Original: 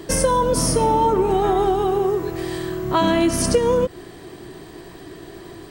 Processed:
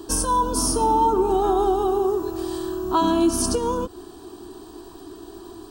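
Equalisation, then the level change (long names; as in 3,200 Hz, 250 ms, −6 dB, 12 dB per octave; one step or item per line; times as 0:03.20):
phaser with its sweep stopped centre 550 Hz, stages 6
0.0 dB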